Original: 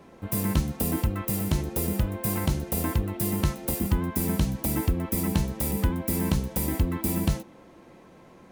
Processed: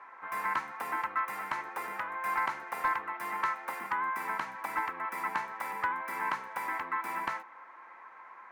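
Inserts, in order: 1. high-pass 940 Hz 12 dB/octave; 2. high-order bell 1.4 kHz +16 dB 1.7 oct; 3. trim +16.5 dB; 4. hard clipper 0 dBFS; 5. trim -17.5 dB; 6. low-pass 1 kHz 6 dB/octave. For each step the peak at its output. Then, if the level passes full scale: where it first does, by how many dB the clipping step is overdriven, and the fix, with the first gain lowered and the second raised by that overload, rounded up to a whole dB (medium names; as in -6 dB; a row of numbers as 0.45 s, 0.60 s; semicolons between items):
-14.5 dBFS, -9.5 dBFS, +7.0 dBFS, 0.0 dBFS, -17.5 dBFS, -19.0 dBFS; step 3, 7.0 dB; step 3 +9.5 dB, step 5 -10.5 dB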